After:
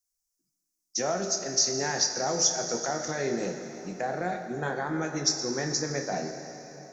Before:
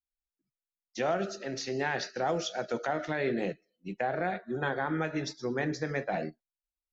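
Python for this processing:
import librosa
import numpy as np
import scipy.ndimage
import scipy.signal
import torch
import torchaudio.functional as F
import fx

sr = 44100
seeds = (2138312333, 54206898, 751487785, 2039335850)

y = fx.high_shelf_res(x, sr, hz=4300.0, db=11.5, q=3.0)
y = fx.doubler(y, sr, ms=28.0, db=-12)
y = fx.rev_plate(y, sr, seeds[0], rt60_s=3.9, hf_ratio=0.9, predelay_ms=0, drr_db=6.0)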